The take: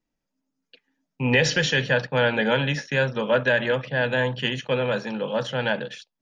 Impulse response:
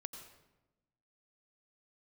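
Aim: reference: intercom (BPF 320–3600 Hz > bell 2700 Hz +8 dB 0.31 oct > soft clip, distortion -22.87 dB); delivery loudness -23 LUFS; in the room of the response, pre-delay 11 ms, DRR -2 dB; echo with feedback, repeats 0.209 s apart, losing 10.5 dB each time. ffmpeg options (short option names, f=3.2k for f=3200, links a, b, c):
-filter_complex "[0:a]aecho=1:1:209|418|627:0.299|0.0896|0.0269,asplit=2[a][b];[1:a]atrim=start_sample=2205,adelay=11[c];[b][c]afir=irnorm=-1:irlink=0,volume=5.5dB[d];[a][d]amix=inputs=2:normalize=0,highpass=320,lowpass=3.6k,equalizer=f=2.7k:t=o:w=0.31:g=8,asoftclip=threshold=-6dB,volume=-3.5dB"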